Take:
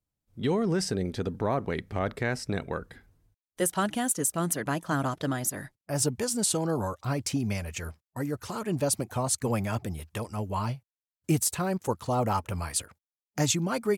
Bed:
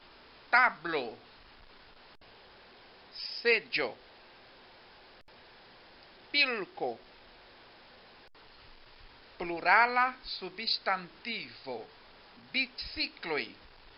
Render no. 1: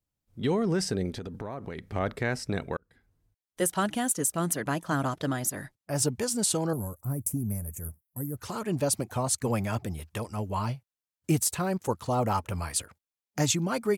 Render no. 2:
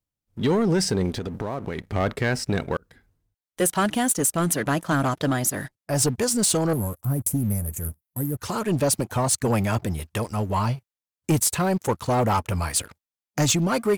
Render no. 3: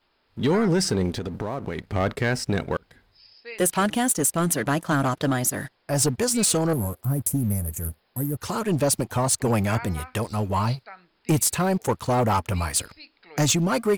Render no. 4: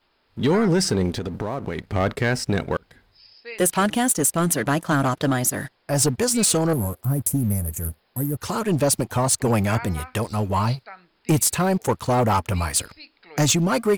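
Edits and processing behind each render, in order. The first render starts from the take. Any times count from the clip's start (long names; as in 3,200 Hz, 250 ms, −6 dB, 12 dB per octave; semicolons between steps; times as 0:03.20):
0:01.15–0:01.84: downward compressor, threshold −33 dBFS; 0:02.77–0:03.61: fade in; 0:06.73–0:08.37: drawn EQ curve 160 Hz 0 dB, 2,000 Hz −19 dB, 2,800 Hz −29 dB, 4,100 Hz −29 dB, 11,000 Hz +14 dB
leveller curve on the samples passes 2; reversed playback; upward compression, threshold −39 dBFS; reversed playback
mix in bed −13 dB
level +2 dB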